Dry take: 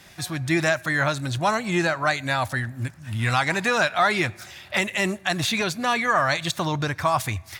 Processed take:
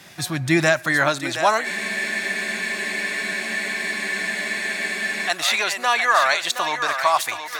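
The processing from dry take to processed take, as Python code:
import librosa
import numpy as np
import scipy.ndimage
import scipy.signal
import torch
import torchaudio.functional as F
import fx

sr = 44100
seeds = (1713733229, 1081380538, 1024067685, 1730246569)

y = fx.echo_thinned(x, sr, ms=721, feedback_pct=40, hz=380.0, wet_db=-8.0)
y = fx.filter_sweep_highpass(y, sr, from_hz=130.0, to_hz=670.0, start_s=0.58, end_s=1.89, q=0.8)
y = fx.spec_freeze(y, sr, seeds[0], at_s=1.67, hold_s=3.61)
y = y * 10.0 ** (4.0 / 20.0)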